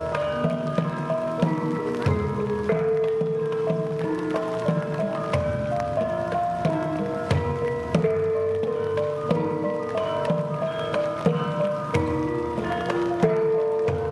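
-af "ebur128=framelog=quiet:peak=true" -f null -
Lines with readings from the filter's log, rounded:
Integrated loudness:
  I:         -25.0 LUFS
  Threshold: -35.0 LUFS
Loudness range:
  LRA:         1.0 LU
  Threshold: -45.2 LUFS
  LRA low:   -25.7 LUFS
  LRA high:  -24.8 LUFS
True peak:
  Peak:      -10.7 dBFS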